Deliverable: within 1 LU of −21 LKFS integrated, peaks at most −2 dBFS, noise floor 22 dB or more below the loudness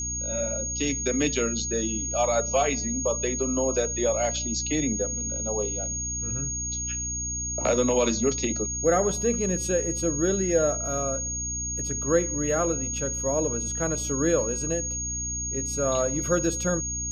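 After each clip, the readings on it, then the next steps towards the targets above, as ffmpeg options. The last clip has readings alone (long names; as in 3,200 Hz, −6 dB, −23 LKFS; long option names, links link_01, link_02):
mains hum 60 Hz; hum harmonics up to 300 Hz; level of the hum −34 dBFS; interfering tone 6,600 Hz; level of the tone −29 dBFS; integrated loudness −25.5 LKFS; sample peak −9.5 dBFS; target loudness −21.0 LKFS
→ -af "bandreject=frequency=60:width_type=h:width=4,bandreject=frequency=120:width_type=h:width=4,bandreject=frequency=180:width_type=h:width=4,bandreject=frequency=240:width_type=h:width=4,bandreject=frequency=300:width_type=h:width=4"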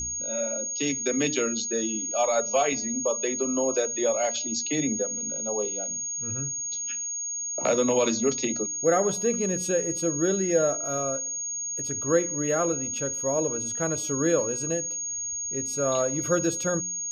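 mains hum none found; interfering tone 6,600 Hz; level of the tone −29 dBFS
→ -af "bandreject=frequency=6600:width=30"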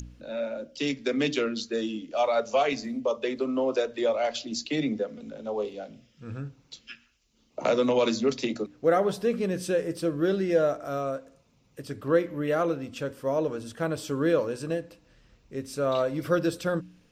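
interfering tone none found; integrated loudness −28.0 LKFS; sample peak −10.0 dBFS; target loudness −21.0 LKFS
→ -af "volume=7dB"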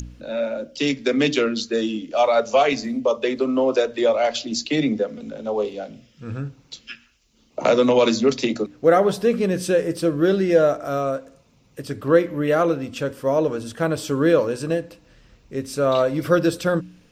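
integrated loudness −21.0 LKFS; sample peak −3.0 dBFS; background noise floor −58 dBFS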